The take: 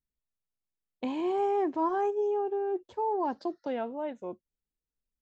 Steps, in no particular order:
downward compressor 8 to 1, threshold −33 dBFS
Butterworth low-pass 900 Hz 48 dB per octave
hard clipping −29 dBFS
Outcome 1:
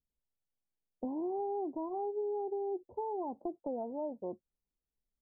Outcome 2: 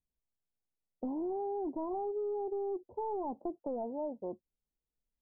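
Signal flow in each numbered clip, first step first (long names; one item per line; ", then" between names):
downward compressor, then hard clipping, then Butterworth low-pass
hard clipping, then Butterworth low-pass, then downward compressor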